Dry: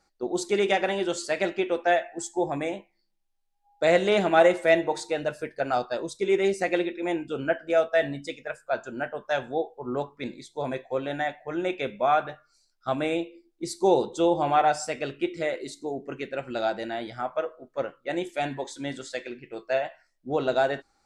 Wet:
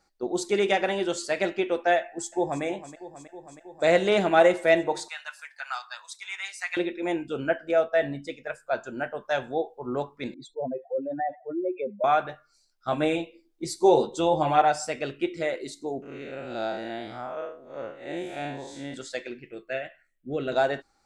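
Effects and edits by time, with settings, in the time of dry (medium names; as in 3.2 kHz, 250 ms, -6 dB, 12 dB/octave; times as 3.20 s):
2.00–2.63 s: echo throw 320 ms, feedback 80%, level -14 dB
5.08–6.77 s: steep high-pass 1 kHz
7.71–8.44 s: treble shelf 3.1 kHz -7.5 dB
10.34–12.04 s: spectral contrast enhancement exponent 2.9
12.91–14.62 s: doubling 13 ms -4 dB
16.02–18.94 s: spectral blur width 148 ms
19.51–20.52 s: static phaser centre 2.2 kHz, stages 4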